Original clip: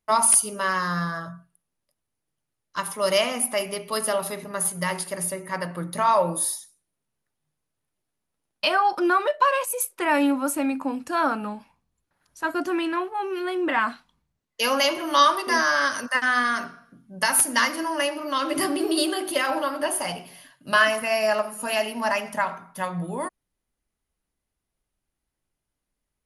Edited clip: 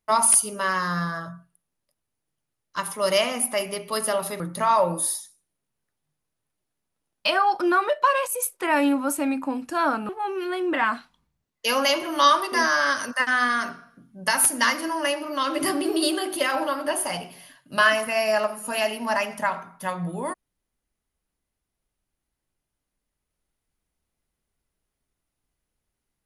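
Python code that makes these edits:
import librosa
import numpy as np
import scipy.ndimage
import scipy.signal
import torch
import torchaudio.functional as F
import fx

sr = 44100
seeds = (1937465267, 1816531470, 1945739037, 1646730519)

y = fx.edit(x, sr, fx.cut(start_s=4.4, length_s=1.38),
    fx.cut(start_s=11.47, length_s=1.57), tone=tone)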